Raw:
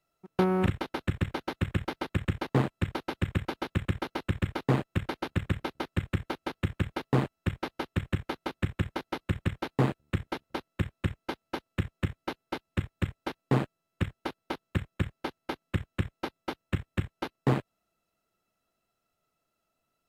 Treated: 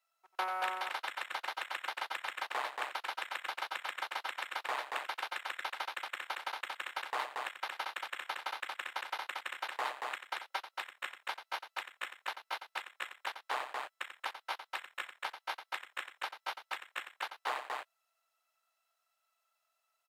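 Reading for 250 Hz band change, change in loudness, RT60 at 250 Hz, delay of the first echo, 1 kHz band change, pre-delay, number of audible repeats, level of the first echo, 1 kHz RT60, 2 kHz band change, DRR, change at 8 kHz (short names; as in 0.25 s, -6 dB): -32.5 dB, -7.0 dB, none, 90 ms, 0.0 dB, none, 2, -10.0 dB, none, +1.0 dB, none, +1.0 dB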